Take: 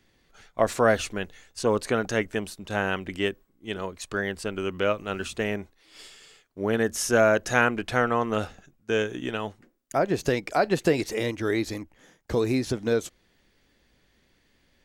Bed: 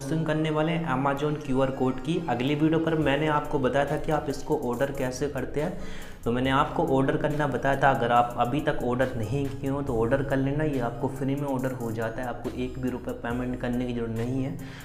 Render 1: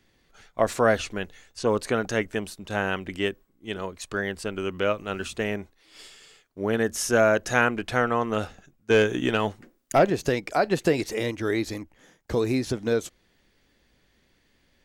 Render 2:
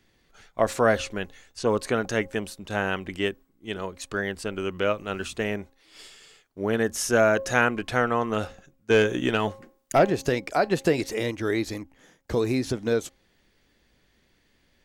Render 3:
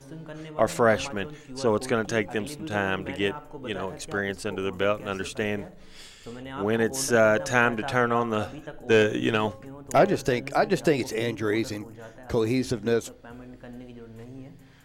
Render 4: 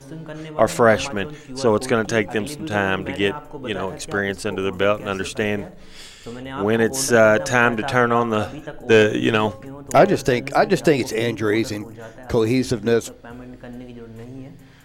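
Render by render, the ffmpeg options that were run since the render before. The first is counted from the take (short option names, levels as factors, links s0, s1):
-filter_complex "[0:a]asettb=1/sr,asplit=3[s0][s1][s2];[s0]atrim=end=0.864[s3];[s1]atrim=start=0.86:end=1.79,asetpts=PTS-STARTPTS,afade=t=in:d=0.004:c=qsin,afade=t=out:st=0.926:d=0.004:c=qsin,acrossover=split=7300[s4][s5];[s5]acompressor=threshold=0.00251:ratio=4:attack=1:release=60[s6];[s4][s6]amix=inputs=2:normalize=0[s7];[s2]atrim=start=1.786[s8];[s3][s7]acrossfade=d=0.004:c1=hsin:c2=qsin[s9];[s9][s8]acrossfade=d=0.004:c1=qsin:c2=hsin,asettb=1/sr,asplit=3[s10][s11][s12];[s10]atrim=end=8.904[s13];[s11]atrim=start=8.9:end=10.1,asetpts=PTS-STARTPTS,afade=t=in:d=0.004:c=qsin,afade=t=out:st=1.196:d=0.004:c=qsin,aeval=exprs='0.282*sin(PI/2*1.41*val(0)/0.282)':c=same[s14];[s12]atrim=start=10.096[s15];[s13][s14]acrossfade=d=0.004:c1=hsin:c2=qsin[s16];[s16][s15]acrossfade=d=0.004:c1=qsin:c2=hsin"
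-af "bandreject=f=269.3:t=h:w=4,bandreject=f=538.6:t=h:w=4,bandreject=f=807.9:t=h:w=4,bandreject=f=1077.2:t=h:w=4"
-filter_complex "[1:a]volume=0.2[s0];[0:a][s0]amix=inputs=2:normalize=0"
-af "volume=2,alimiter=limit=0.891:level=0:latency=1"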